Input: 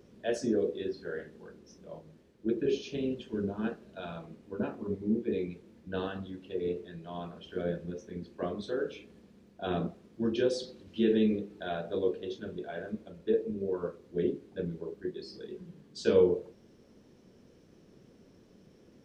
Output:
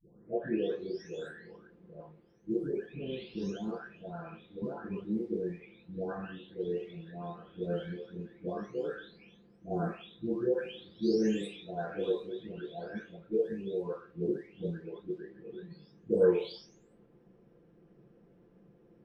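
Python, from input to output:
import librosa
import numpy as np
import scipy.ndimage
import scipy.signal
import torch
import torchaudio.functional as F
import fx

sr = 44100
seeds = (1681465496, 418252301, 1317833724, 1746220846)

y = fx.spec_delay(x, sr, highs='late', ms=921)
y = fx.env_lowpass(y, sr, base_hz=1600.0, full_db=-27.5)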